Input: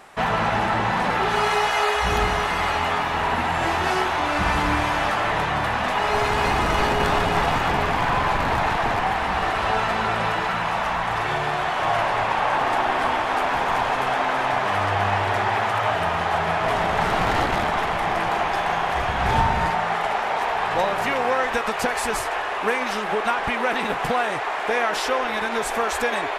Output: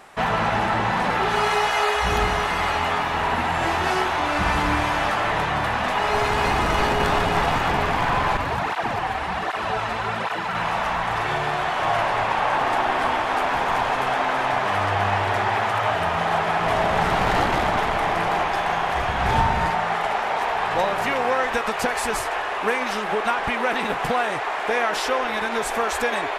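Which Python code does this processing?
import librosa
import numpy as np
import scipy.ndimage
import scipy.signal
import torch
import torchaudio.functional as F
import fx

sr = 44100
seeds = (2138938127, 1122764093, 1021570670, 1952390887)

y = fx.flanger_cancel(x, sr, hz=1.3, depth_ms=6.2, at=(8.37, 10.55))
y = fx.echo_alternate(y, sr, ms=125, hz=830.0, feedback_pct=59, wet_db=-5, at=(16.16, 18.43), fade=0.02)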